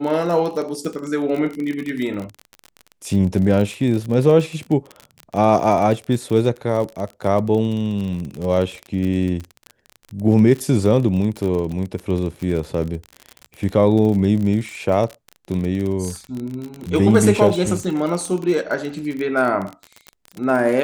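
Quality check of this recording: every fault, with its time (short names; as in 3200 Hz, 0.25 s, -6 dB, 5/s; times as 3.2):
crackle 36/s -24 dBFS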